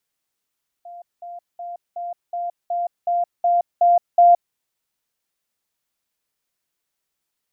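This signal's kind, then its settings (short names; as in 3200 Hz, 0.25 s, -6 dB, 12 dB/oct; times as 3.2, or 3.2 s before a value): level ladder 697 Hz -35 dBFS, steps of 3 dB, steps 10, 0.17 s 0.20 s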